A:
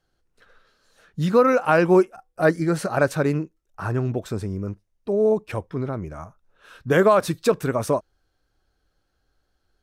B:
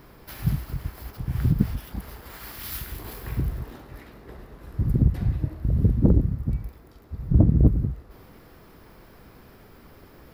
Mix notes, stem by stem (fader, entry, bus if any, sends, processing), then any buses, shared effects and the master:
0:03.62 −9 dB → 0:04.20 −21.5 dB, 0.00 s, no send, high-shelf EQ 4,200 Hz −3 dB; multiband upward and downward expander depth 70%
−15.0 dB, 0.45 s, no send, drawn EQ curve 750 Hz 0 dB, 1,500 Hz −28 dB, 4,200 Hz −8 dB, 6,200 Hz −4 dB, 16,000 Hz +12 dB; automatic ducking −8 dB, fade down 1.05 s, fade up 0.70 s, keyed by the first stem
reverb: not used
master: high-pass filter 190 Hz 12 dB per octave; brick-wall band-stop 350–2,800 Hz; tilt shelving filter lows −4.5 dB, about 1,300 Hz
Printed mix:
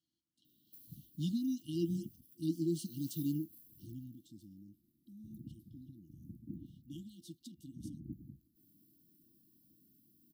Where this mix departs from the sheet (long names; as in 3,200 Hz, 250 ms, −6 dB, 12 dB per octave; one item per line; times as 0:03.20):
stem A: missing multiband upward and downward expander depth 70%
master: missing tilt shelving filter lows −4.5 dB, about 1,300 Hz